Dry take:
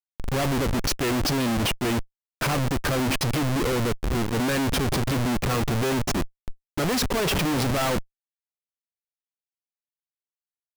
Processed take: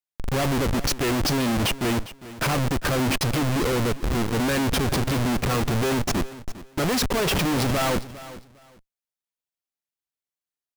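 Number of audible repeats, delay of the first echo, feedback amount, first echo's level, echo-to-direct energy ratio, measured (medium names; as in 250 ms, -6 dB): 2, 404 ms, 21%, -16.5 dB, -16.5 dB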